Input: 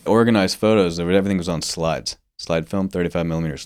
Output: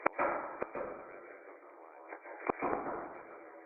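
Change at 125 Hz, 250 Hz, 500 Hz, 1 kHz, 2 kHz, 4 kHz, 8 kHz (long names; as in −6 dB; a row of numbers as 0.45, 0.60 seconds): −36.5 dB, −26.0 dB, −20.5 dB, −10.5 dB, −14.0 dB, below −40 dB, below −40 dB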